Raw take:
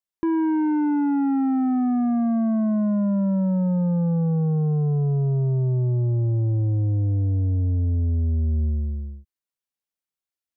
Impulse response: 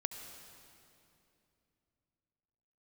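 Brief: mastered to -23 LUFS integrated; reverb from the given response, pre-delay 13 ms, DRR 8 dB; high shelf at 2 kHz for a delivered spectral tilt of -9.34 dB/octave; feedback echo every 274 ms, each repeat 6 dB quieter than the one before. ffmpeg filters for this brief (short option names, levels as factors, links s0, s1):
-filter_complex "[0:a]highshelf=f=2000:g=-5.5,aecho=1:1:274|548|822|1096|1370|1644:0.501|0.251|0.125|0.0626|0.0313|0.0157,asplit=2[s0][s1];[1:a]atrim=start_sample=2205,adelay=13[s2];[s1][s2]afir=irnorm=-1:irlink=0,volume=0.398[s3];[s0][s3]amix=inputs=2:normalize=0,volume=0.75"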